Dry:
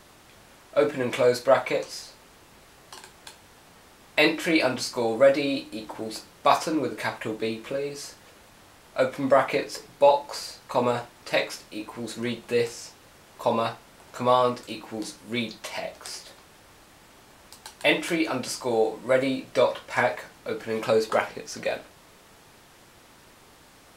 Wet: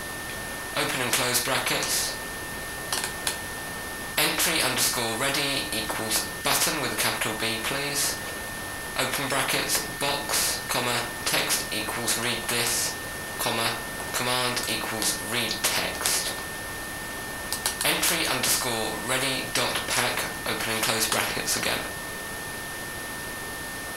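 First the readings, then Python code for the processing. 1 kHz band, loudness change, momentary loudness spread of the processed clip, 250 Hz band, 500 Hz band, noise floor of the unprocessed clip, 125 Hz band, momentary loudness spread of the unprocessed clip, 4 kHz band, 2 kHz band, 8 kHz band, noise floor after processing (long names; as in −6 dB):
−1.5 dB, +0.5 dB, 10 LU, −3.5 dB, −8.0 dB, −54 dBFS, +3.0 dB, 16 LU, +9.0 dB, +5.0 dB, +15.0 dB, −35 dBFS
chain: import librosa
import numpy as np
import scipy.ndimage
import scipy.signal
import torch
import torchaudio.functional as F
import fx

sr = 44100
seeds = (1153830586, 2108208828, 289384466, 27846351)

y = fx.peak_eq(x, sr, hz=11000.0, db=10.5, octaves=0.25)
y = fx.notch(y, sr, hz=7500.0, q=16.0)
y = y + 10.0 ** (-35.0 / 20.0) * np.sin(2.0 * np.pi * 1800.0 * np.arange(len(y)) / sr)
y = fx.spectral_comp(y, sr, ratio=4.0)
y = y * 10.0 ** (1.5 / 20.0)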